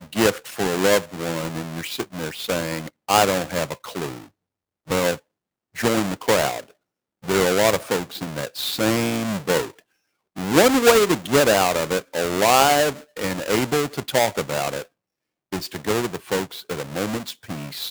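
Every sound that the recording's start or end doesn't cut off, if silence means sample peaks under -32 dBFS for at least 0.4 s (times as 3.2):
4.9–5.16
5.76–6.6
7.24–9.7
10.37–14.82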